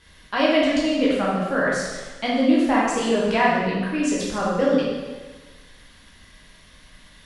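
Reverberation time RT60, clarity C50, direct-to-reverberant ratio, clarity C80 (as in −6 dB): 1.3 s, −1.0 dB, −6.5 dB, 2.0 dB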